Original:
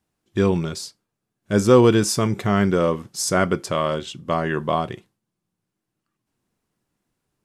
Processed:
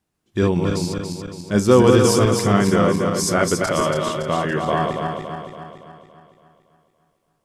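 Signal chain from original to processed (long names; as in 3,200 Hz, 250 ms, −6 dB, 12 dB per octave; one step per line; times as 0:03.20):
feedback delay that plays each chunk backwards 141 ms, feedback 72%, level −3.5 dB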